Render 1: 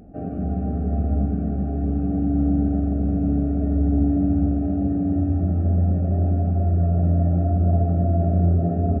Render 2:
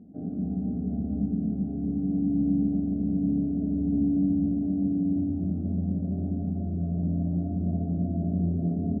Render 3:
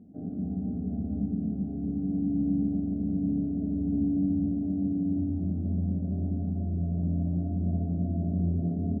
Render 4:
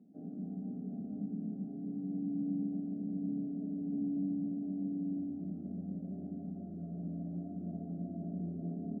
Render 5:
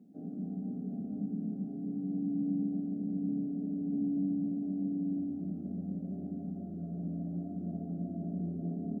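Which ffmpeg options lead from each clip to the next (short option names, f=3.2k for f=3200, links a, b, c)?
-af "bandpass=f=220:t=q:w=2.1:csg=0"
-af "equalizer=f=91:t=o:w=0.24:g=6.5,volume=-2.5dB"
-af "highpass=f=160:w=0.5412,highpass=f=160:w=1.3066,volume=-8dB"
-af "bandreject=f=640:w=17,volume=3dB"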